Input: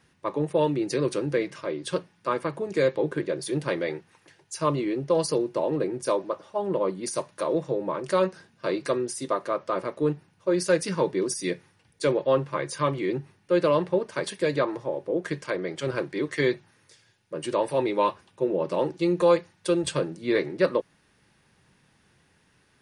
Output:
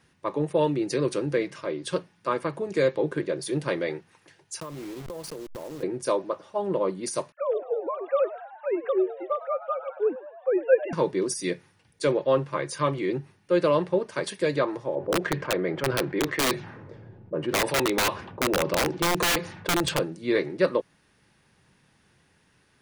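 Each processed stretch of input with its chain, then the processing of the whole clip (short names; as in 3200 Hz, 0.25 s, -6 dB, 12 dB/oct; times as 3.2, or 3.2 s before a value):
4.6–5.83 level-crossing sampler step -30.5 dBFS + compressor 16:1, threshold -33 dBFS
7.32–10.93 sine-wave speech + frequency-shifting echo 0.103 s, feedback 64%, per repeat +81 Hz, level -16 dB
14.95–19.99 low-pass opened by the level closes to 430 Hz, open at -20 dBFS + wrapped overs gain 18.5 dB + fast leveller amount 50%
whole clip: dry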